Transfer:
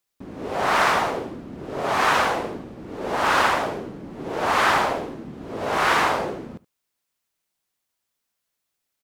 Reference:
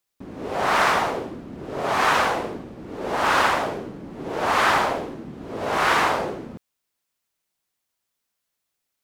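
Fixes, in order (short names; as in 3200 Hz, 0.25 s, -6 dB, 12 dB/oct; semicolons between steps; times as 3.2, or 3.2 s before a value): inverse comb 72 ms -21.5 dB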